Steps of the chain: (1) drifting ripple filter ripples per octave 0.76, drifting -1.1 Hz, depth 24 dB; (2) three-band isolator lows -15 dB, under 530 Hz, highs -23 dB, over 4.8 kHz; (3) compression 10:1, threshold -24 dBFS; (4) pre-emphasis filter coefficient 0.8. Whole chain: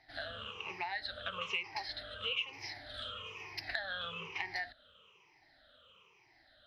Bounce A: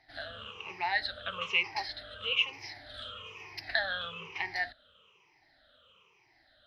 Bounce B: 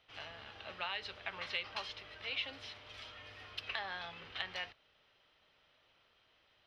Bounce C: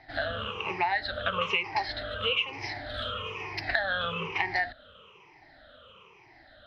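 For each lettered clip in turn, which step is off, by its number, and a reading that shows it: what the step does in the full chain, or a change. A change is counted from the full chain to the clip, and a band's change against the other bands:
3, mean gain reduction 2.5 dB; 1, crest factor change +3.5 dB; 4, 4 kHz band -6.5 dB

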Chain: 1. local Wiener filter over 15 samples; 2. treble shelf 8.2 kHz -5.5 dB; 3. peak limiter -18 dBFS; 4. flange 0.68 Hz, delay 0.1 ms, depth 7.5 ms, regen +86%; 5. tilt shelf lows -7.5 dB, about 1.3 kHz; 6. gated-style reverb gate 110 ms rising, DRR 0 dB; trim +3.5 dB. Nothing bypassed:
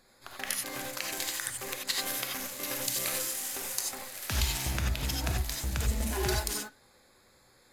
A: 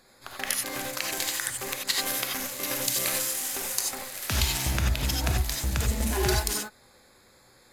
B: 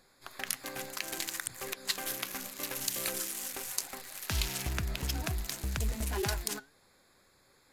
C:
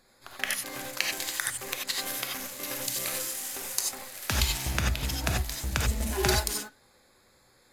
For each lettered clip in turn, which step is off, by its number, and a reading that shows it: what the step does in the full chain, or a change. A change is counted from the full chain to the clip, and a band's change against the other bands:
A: 4, loudness change +4.5 LU; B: 6, crest factor change +3.0 dB; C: 3, crest factor change +3.0 dB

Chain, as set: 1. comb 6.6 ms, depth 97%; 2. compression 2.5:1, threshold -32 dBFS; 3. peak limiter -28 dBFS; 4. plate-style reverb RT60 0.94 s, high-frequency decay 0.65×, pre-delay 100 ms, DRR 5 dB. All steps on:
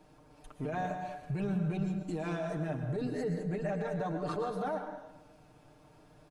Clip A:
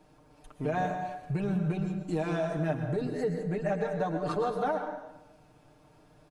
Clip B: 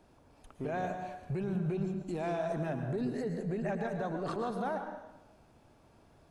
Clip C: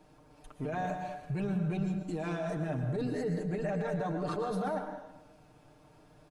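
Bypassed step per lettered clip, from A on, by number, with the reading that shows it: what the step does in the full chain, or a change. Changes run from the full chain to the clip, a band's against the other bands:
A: 3, mean gain reduction 1.5 dB; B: 1, 125 Hz band -2.0 dB; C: 2, mean gain reduction 7.0 dB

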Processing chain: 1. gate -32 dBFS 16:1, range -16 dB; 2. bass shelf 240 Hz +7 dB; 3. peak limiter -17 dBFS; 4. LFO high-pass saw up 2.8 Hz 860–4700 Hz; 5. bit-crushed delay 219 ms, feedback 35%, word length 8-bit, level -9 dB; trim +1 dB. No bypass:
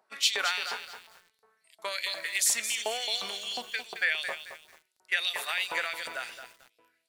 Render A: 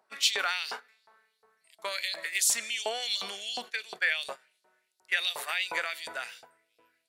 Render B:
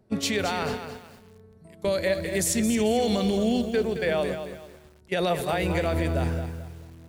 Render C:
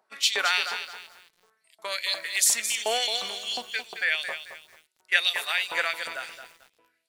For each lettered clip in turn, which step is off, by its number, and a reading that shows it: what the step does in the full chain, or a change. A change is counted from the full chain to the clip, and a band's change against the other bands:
5, momentary loudness spread change -2 LU; 4, 250 Hz band +31.5 dB; 3, mean gain reduction 1.5 dB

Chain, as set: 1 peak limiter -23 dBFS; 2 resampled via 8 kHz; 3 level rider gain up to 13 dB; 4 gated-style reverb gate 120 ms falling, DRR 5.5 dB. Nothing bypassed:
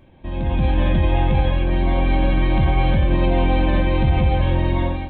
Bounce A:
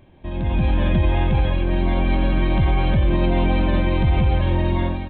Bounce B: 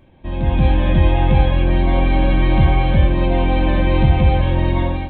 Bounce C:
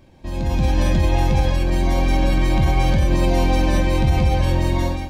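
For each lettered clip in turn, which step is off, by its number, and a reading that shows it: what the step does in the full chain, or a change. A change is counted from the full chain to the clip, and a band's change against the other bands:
4, crest factor change -2.0 dB; 1, mean gain reduction 3.5 dB; 2, 4 kHz band +2.5 dB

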